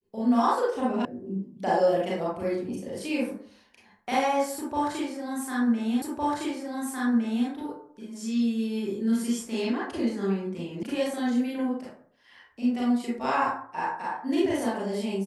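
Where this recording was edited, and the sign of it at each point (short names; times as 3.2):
1.05 sound cut off
6.02 repeat of the last 1.46 s
10.83 sound cut off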